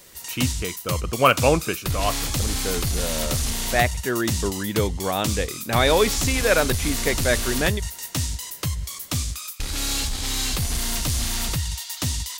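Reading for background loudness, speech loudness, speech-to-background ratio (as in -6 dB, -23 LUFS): -26.0 LUFS, -24.0 LUFS, 2.0 dB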